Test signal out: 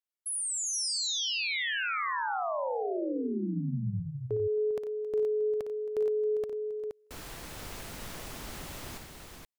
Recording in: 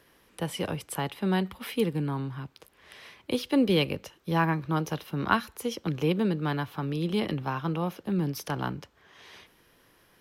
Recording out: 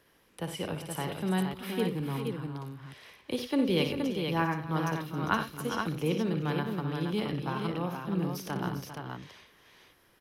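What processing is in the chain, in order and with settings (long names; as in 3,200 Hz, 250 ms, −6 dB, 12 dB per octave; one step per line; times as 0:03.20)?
multi-tap delay 58/91/270/400/472 ms −8.5/−12/−17/−11/−5 dB
level −4.5 dB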